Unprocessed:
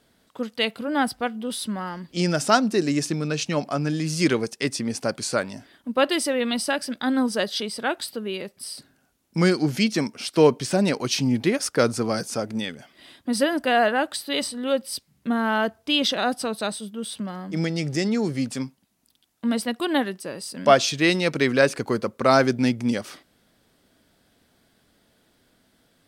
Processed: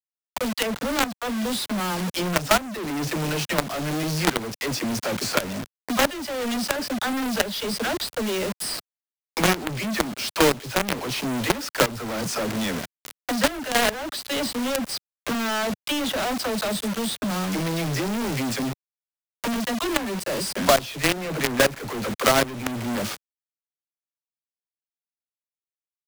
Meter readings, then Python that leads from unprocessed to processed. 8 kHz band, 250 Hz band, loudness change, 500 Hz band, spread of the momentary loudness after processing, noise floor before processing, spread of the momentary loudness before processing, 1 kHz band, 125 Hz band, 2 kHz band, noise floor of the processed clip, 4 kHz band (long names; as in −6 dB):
+2.5 dB, −2.5 dB, −1.0 dB, −2.5 dB, 9 LU, −65 dBFS, 12 LU, −0.5 dB, −2.0 dB, +0.5 dB, below −85 dBFS, +0.5 dB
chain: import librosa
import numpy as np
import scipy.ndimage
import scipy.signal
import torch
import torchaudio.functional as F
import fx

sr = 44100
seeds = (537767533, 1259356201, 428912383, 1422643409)

y = fx.env_lowpass_down(x, sr, base_hz=2700.0, full_db=-19.0)
y = fx.peak_eq(y, sr, hz=620.0, db=4.0, octaves=0.22)
y = fx.dispersion(y, sr, late='lows', ms=56.0, hz=340.0)
y = fx.quant_companded(y, sr, bits=2)
y = fx.band_squash(y, sr, depth_pct=70)
y = y * 10.0 ** (-4.5 / 20.0)